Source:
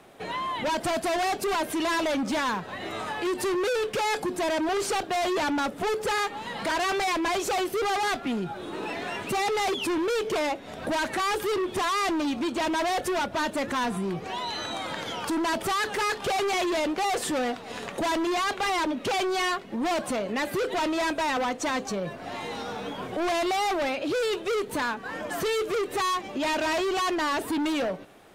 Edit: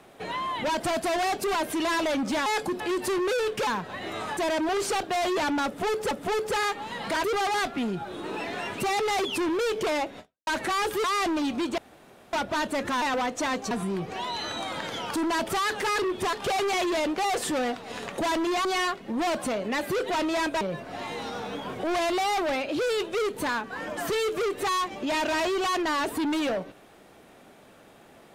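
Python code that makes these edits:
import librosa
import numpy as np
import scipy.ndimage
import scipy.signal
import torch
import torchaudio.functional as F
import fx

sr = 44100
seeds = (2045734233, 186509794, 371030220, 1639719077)

y = fx.edit(x, sr, fx.swap(start_s=2.46, length_s=0.7, other_s=4.03, other_length_s=0.34),
    fx.repeat(start_s=5.66, length_s=0.45, count=2),
    fx.cut(start_s=6.79, length_s=0.94),
    fx.fade_out_span(start_s=10.68, length_s=0.28, curve='exp'),
    fx.move(start_s=11.53, length_s=0.34, to_s=16.13),
    fx.room_tone_fill(start_s=12.61, length_s=0.55),
    fx.cut(start_s=18.45, length_s=0.84),
    fx.move(start_s=21.25, length_s=0.69, to_s=13.85), tone=tone)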